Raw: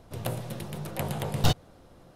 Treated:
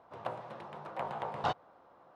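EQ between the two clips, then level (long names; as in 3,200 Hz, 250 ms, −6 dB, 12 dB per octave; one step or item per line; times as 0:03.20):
resonant band-pass 990 Hz, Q 1.9
high-frequency loss of the air 57 metres
+3.5 dB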